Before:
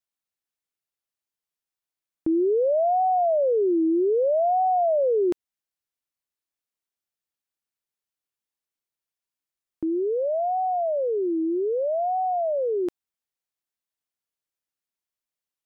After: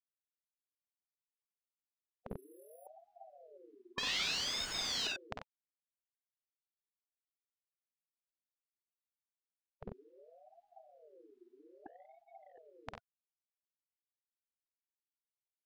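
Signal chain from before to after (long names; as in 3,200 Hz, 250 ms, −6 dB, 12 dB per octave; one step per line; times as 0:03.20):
0:03.98–0:05.07: sign of each sample alone
in parallel at −3 dB: brickwall limiter −28.5 dBFS, peak gain reduction 11 dB
on the sum: multi-tap delay 50/54/65/92 ms −6/−10.5/−10/−7 dB
0:02.30–0:02.87: bad sample-rate conversion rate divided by 4×, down filtered, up hold
0:11.86–0:12.58: downward expander −18 dBFS
high-frequency loss of the air 180 metres
gate on every frequency bin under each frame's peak −25 dB weak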